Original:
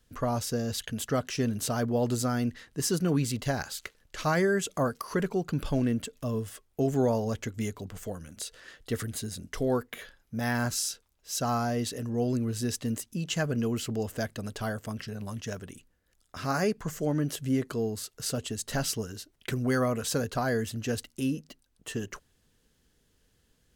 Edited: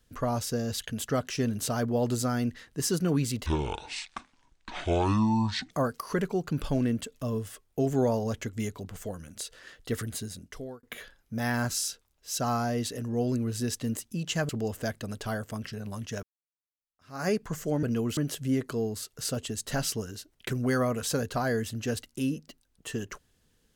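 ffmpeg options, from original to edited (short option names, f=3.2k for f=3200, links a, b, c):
-filter_complex "[0:a]asplit=8[a][b][c][d][e][f][g][h];[a]atrim=end=3.464[i];[b]atrim=start=3.46:end=4.72,asetpts=PTS-STARTPTS,asetrate=24696,aresample=44100[j];[c]atrim=start=4.716:end=9.84,asetpts=PTS-STARTPTS,afade=t=out:st=4.444:d=0.68[k];[d]atrim=start=9.84:end=13.502,asetpts=PTS-STARTPTS,afade=t=in:d=0.004:c=hsin[l];[e]atrim=start=13.838:end=15.58,asetpts=PTS-STARTPTS,afade=t=out:st=1.738:d=0.004:c=hsin[m];[f]atrim=start=15.58:end=17.182,asetpts=PTS-STARTPTS,afade=t=in:d=1.04:c=exp[n];[g]atrim=start=13.498:end=13.842[o];[h]atrim=start=17.178[p];[i][j]acrossfade=d=0.004:c1=hsin:c2=hsin[q];[k][l]concat=n=2:v=0:a=1[r];[q][r]acrossfade=d=0.004:c1=hsin:c2=hsin[s];[m][n]concat=n=2:v=0:a=1[t];[s][t]acrossfade=d=0.004:c1=hsin:c2=hsin[u];[u][o]acrossfade=d=0.004:c1=hsin:c2=hsin[v];[v][p]acrossfade=d=0.004:c1=hsin:c2=hsin"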